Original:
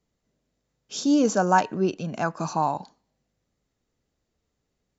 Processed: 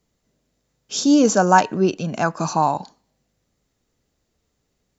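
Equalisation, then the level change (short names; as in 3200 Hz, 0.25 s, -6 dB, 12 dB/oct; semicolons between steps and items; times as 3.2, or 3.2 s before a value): high shelf 4900 Hz +4.5 dB; +5.5 dB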